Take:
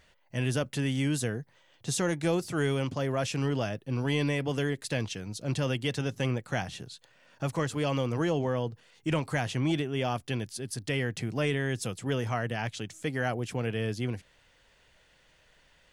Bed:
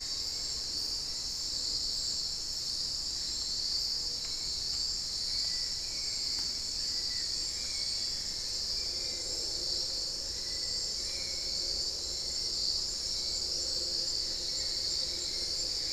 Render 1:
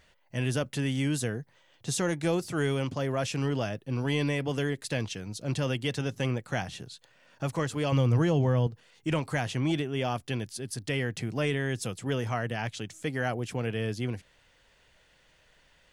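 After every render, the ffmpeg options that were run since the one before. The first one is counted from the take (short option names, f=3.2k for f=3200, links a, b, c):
-filter_complex "[0:a]asettb=1/sr,asplit=3[a][b][c];[a]atrim=end=7.924[d];[b]atrim=start=7.92:end=8.67,asetpts=PTS-STARTPTS,afade=t=in:d=0.004:c=qsin,afade=t=out:st=0.746:d=0.004:c=qsin,equalizer=f=100:w=0.94:g=11.5[e];[c]atrim=start=8.666[f];[d][e]acrossfade=d=0.004:c1=hsin:c2=qsin[g];[g][f]acrossfade=d=0.004:c1=qsin:c2=hsin"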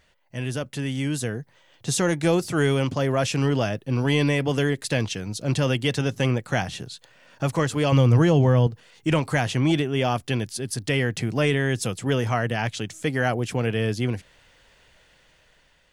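-af "dynaudnorm=f=580:g=5:m=7dB"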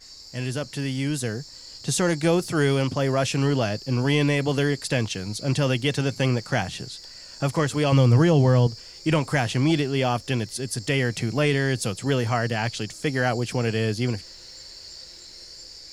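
-filter_complex "[1:a]volume=-9dB[a];[0:a][a]amix=inputs=2:normalize=0"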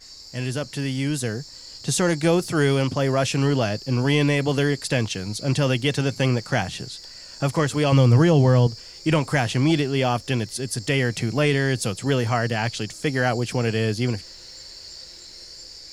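-af "volume=1.5dB"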